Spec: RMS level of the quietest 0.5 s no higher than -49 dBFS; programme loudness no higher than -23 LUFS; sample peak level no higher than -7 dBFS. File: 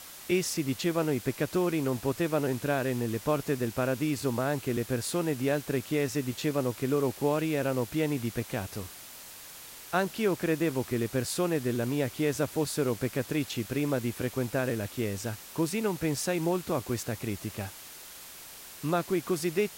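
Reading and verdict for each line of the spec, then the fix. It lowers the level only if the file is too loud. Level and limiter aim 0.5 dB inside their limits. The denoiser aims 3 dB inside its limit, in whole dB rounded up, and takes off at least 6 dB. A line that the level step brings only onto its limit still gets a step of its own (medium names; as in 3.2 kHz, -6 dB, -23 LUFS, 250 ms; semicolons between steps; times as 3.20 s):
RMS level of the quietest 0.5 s -47 dBFS: fail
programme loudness -30.5 LUFS: pass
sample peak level -14.5 dBFS: pass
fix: noise reduction 6 dB, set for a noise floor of -47 dBFS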